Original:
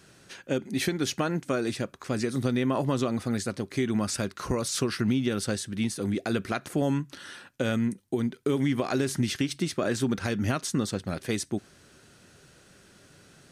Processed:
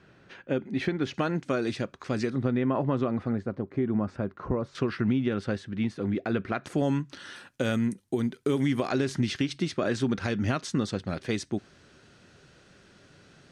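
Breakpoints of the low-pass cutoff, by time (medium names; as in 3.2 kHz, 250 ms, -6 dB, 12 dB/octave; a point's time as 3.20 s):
2.5 kHz
from 1.14 s 5.1 kHz
from 2.30 s 1.9 kHz
from 3.33 s 1.1 kHz
from 4.75 s 2.4 kHz
from 6.64 s 6.4 kHz
from 7.36 s 12 kHz
from 8.88 s 5.2 kHz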